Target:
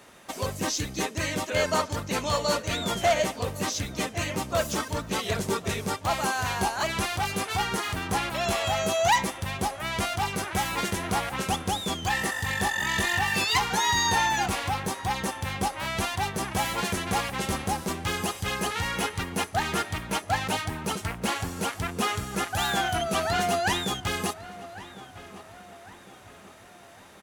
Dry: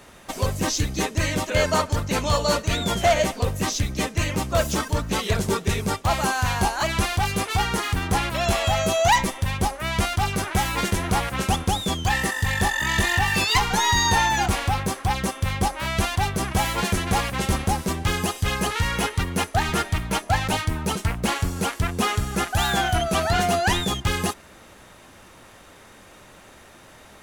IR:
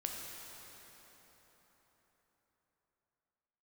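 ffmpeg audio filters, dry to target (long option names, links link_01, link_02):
-filter_complex "[0:a]highpass=frequency=160:poles=1,asplit=2[link_01][link_02];[link_02]adelay=1105,lowpass=frequency=2800:poles=1,volume=-16dB,asplit=2[link_03][link_04];[link_04]adelay=1105,lowpass=frequency=2800:poles=1,volume=0.5,asplit=2[link_05][link_06];[link_06]adelay=1105,lowpass=frequency=2800:poles=1,volume=0.5,asplit=2[link_07][link_08];[link_08]adelay=1105,lowpass=frequency=2800:poles=1,volume=0.5[link_09];[link_03][link_05][link_07][link_09]amix=inputs=4:normalize=0[link_10];[link_01][link_10]amix=inputs=2:normalize=0,volume=-3.5dB"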